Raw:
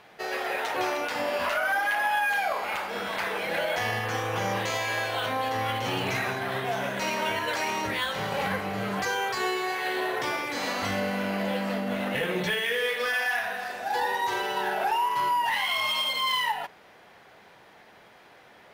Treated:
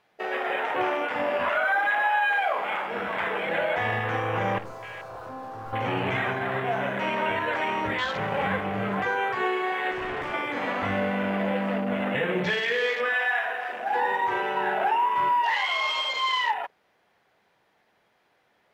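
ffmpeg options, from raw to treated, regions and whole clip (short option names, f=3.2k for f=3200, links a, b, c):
-filter_complex "[0:a]asettb=1/sr,asplit=3[a][b][c];[a]atrim=end=4.584[d];[b]atrim=start=4.58:end=5.73,asetpts=PTS-STARTPTS,afade=t=in:d=0.004:c=qsin,afade=t=out:st=1.146:d=0.004:c=qsin,asuperstop=centerf=3400:order=4:qfactor=3.2,aeval=exprs='(tanh(70.8*val(0)+0.75)-tanh(0.75))/70.8':c=same[e];[c]atrim=start=5.726[f];[d][e]acrossfade=d=0.004:c1=hsin:c2=qsin[g];[g][f]acrossfade=d=0.004:c1=qsin:c2=hsin,asettb=1/sr,asplit=3[h][i][j];[h]atrim=end=9.914[k];[i]atrim=start=9.91:end=10.34,asetpts=PTS-STARTPTS,afade=t=in:d=0.004:c=qsin,afade=t=out:st=0.426:d=0.004:c=qsin,lowpass=8.4k,aeval=exprs='0.0398*(abs(mod(val(0)/0.0398+3,4)-2)-1)':c=same[l];[j]atrim=start=10.336[m];[k][l]acrossfade=d=0.004:c1=hsin:c2=qsin[n];[n][m]acrossfade=d=0.004:c1=qsin:c2=hsin,acrossover=split=3100[o][p];[p]acompressor=threshold=-40dB:ratio=4:attack=1:release=60[q];[o][q]amix=inputs=2:normalize=0,afwtdn=0.0158,volume=2.5dB"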